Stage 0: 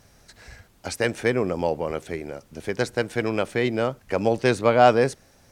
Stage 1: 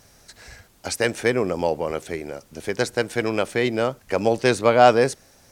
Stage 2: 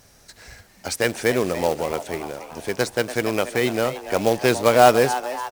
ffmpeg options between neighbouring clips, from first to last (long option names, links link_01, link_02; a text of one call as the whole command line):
ffmpeg -i in.wav -af "bass=frequency=250:gain=-3,treble=frequency=4000:gain=4,volume=2dB" out.wav
ffmpeg -i in.wav -filter_complex "[0:a]acrusher=bits=3:mode=log:mix=0:aa=0.000001,asplit=6[link_01][link_02][link_03][link_04][link_05][link_06];[link_02]adelay=288,afreqshift=130,volume=-12.5dB[link_07];[link_03]adelay=576,afreqshift=260,volume=-18.2dB[link_08];[link_04]adelay=864,afreqshift=390,volume=-23.9dB[link_09];[link_05]adelay=1152,afreqshift=520,volume=-29.5dB[link_10];[link_06]adelay=1440,afreqshift=650,volume=-35.2dB[link_11];[link_01][link_07][link_08][link_09][link_10][link_11]amix=inputs=6:normalize=0" out.wav